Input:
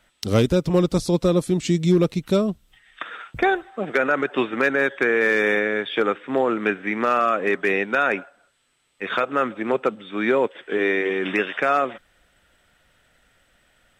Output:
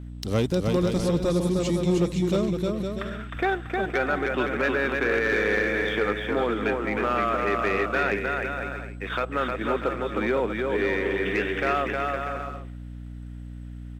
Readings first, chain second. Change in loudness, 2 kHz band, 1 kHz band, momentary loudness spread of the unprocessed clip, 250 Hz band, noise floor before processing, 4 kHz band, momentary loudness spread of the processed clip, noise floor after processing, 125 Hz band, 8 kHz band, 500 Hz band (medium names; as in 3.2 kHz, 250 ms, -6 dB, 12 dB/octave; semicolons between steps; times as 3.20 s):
-4.0 dB, -3.5 dB, -3.0 dB, 7 LU, -3.5 dB, -63 dBFS, -3.0 dB, 10 LU, -38 dBFS, -2.0 dB, no reading, -3.5 dB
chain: bouncing-ball echo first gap 310 ms, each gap 0.65×, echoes 5; hum 60 Hz, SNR 12 dB; waveshaping leveller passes 1; trim -8.5 dB